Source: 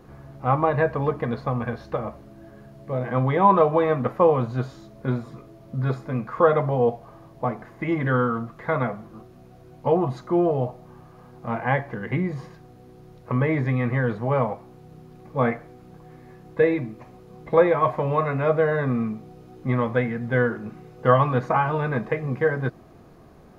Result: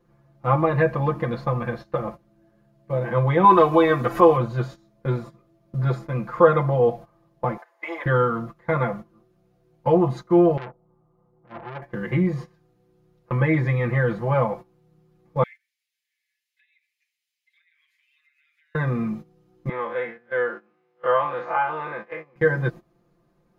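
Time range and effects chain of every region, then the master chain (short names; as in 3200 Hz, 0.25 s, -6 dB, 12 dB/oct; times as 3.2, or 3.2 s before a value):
3.44–4.37 high shelf 3000 Hz +9.5 dB + comb 2.7 ms, depth 53% + upward compressor, threshold -19 dBFS
7.57–8.06 HPF 540 Hz 24 dB/oct + bell 800 Hz +5 dB 0.93 oct
10.57–11.82 compressor 2:1, threshold -26 dBFS + polynomial smoothing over 65 samples + core saturation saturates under 1800 Hz
15.43–18.75 steep high-pass 2000 Hz 48 dB/oct + compressor 12:1, threshold -46 dBFS
19.69–22.36 time blur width 81 ms + BPF 520–3200 Hz
whole clip: gate -35 dBFS, range -17 dB; bell 720 Hz -4.5 dB 0.2 oct; comb 5.8 ms, depth 98%; gain -1 dB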